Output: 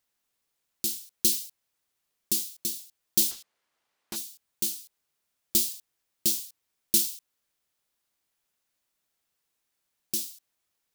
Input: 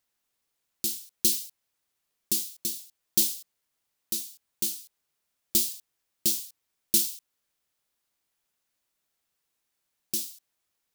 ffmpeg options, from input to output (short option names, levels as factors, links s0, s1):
-filter_complex "[0:a]asplit=3[s0][s1][s2];[s0]afade=t=out:st=3.3:d=0.02[s3];[s1]asplit=2[s4][s5];[s5]highpass=f=720:p=1,volume=7.08,asoftclip=type=tanh:threshold=0.2[s6];[s4][s6]amix=inputs=2:normalize=0,lowpass=f=1400:p=1,volume=0.501,afade=t=in:st=3.3:d=0.02,afade=t=out:st=4.15:d=0.02[s7];[s2]afade=t=in:st=4.15:d=0.02[s8];[s3][s7][s8]amix=inputs=3:normalize=0"